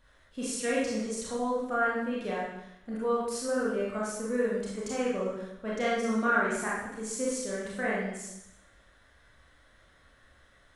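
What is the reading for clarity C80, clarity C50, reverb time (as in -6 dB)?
3.5 dB, -0.5 dB, 0.85 s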